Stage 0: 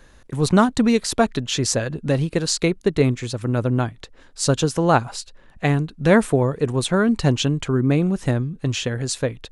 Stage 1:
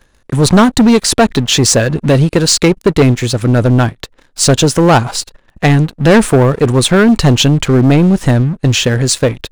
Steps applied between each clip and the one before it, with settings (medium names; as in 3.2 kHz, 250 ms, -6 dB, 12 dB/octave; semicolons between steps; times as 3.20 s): waveshaping leveller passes 3; trim +2 dB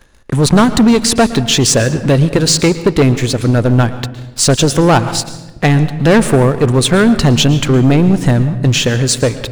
in parallel at +2 dB: compression, threshold -19 dBFS, peak gain reduction 13.5 dB; on the sum: reverberation RT60 1.1 s, pre-delay 111 ms, DRR 13 dB; trim -4 dB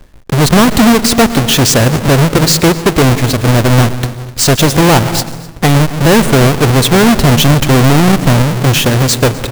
square wave that keeps the level; delay 254 ms -21.5 dB; trim -1 dB